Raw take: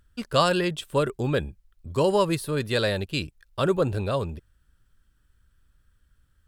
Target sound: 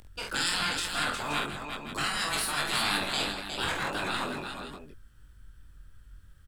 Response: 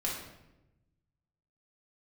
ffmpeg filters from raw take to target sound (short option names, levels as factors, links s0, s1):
-filter_complex "[0:a]acrossover=split=480|1900[s0][s1][s2];[s0]aeval=exprs='0.0299*(abs(mod(val(0)/0.0299+3,4)-2)-1)':c=same[s3];[s3][s1][s2]amix=inputs=3:normalize=0,lowshelf=f=140:g=5.5,afftfilt=real='re*lt(hypot(re,im),0.0794)':imag='im*lt(hypot(re,im),0.0794)':win_size=1024:overlap=0.75,adynamicequalizer=threshold=0.00158:dfrequency=1400:dqfactor=3:tfrequency=1400:tqfactor=3:attack=5:release=100:ratio=0.375:range=2.5:mode=boostabove:tftype=bell,acompressor=mode=upward:threshold=0.00178:ratio=2.5,flanger=delay=20:depth=2.5:speed=3,asplit=2[s4][s5];[s5]aecho=0:1:48|158|360|524:0.631|0.224|0.501|0.299[s6];[s4][s6]amix=inputs=2:normalize=0,volume=2.24"